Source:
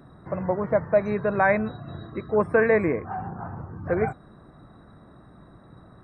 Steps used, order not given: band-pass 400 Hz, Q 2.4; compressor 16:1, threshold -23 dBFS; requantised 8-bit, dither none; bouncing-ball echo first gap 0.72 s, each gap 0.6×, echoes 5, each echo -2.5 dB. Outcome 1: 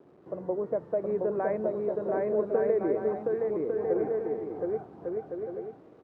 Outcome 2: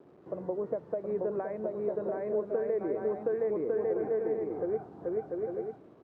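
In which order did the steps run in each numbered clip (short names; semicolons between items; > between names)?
requantised > band-pass > compressor > bouncing-ball echo; bouncing-ball echo > compressor > requantised > band-pass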